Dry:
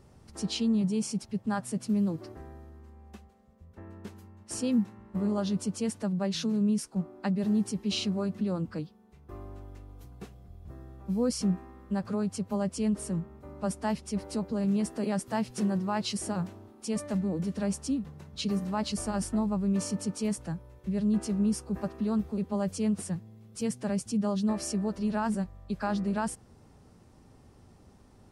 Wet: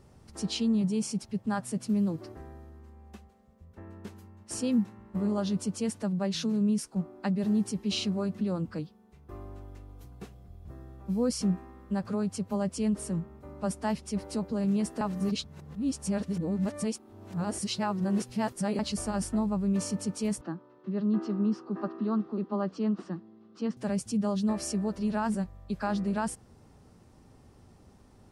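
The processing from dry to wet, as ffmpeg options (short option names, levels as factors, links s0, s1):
-filter_complex "[0:a]asettb=1/sr,asplit=3[s0][s1][s2];[s0]atrim=end=20.414[s3];[s1]atrim=start=20.41:end=23.77,asetpts=PTS-STARTPTS,afade=t=in:d=0.004:c=qsin,afade=t=out:st=3.356:d=0.004:c=qsin,highpass=f=190:w=0.5412,highpass=f=190:w=1.3066,equalizer=f=330:t=q:w=4:g=10,equalizer=f=500:t=q:w=4:g=-5,equalizer=f=1200:t=q:w=4:g=8,equalizer=f=2300:t=q:w=4:g=-9,equalizer=f=3400:t=q:w=4:g=-4,lowpass=f=4100:w=0.5412,lowpass=f=4100:w=1.3066[s4];[s2]atrim=start=23.766[s5];[s3][s4]acrossfade=d=0.004:c1=hsin:c2=qsin[s6];[s6][s5]acrossfade=d=0.004:c1=qsin:c2=hsin,asplit=3[s7][s8][s9];[s7]atrim=end=15.012[s10];[s8]atrim=start=15.008:end=18.792,asetpts=PTS-STARTPTS,areverse[s11];[s9]atrim=start=18.788[s12];[s10][s11]acrossfade=d=0.004:c1=hsin:c2=hsin[s13];[s13][s12]acrossfade=d=0.004:c1=hsin:c2=hsin"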